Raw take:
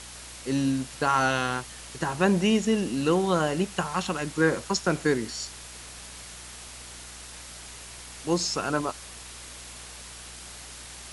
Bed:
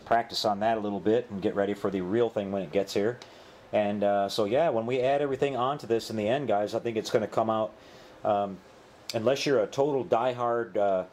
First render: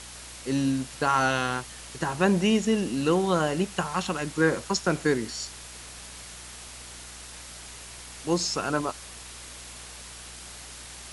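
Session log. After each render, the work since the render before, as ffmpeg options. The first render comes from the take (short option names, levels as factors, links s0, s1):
-af anull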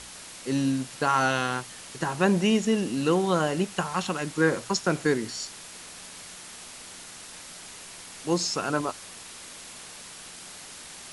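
-af "bandreject=f=60:t=h:w=4,bandreject=f=120:t=h:w=4"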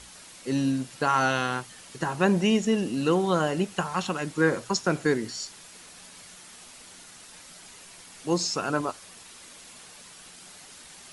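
-af "afftdn=nr=6:nf=-44"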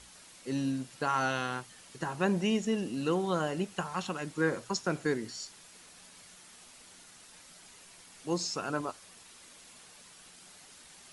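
-af "volume=0.473"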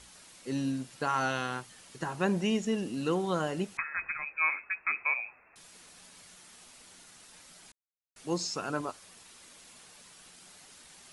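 -filter_complex "[0:a]asettb=1/sr,asplit=3[s0][s1][s2];[s0]atrim=end=3.774[s3];[s1]atrim=start=3.77:end=5.56,asetpts=PTS-STARTPTS,afade=t=in:d=0.004:c=qsin,afade=t=out:st=1.786:d=0.004:c=qsin,lowpass=f=2300:t=q:w=0.5098,lowpass=f=2300:t=q:w=0.6013,lowpass=f=2300:t=q:w=0.9,lowpass=f=2300:t=q:w=2.563,afreqshift=-2700[s4];[s2]atrim=start=5.556[s5];[s3][s4]acrossfade=d=0.004:c1=hsin:c2=qsin[s6];[s6][s5]acrossfade=d=0.004:c1=qsin:c2=hsin,asplit=3[s7][s8][s9];[s7]atrim=end=7.72,asetpts=PTS-STARTPTS,afade=t=out:st=7.716:d=0.004:c=hsin[s10];[s8]atrim=start=7.72:end=8.16,asetpts=PTS-STARTPTS,volume=0[s11];[s9]atrim=start=8.16,asetpts=PTS-STARTPTS,afade=t=in:d=0.004:c=hsin[s12];[s10][s11][s12]concat=n=3:v=0:a=1"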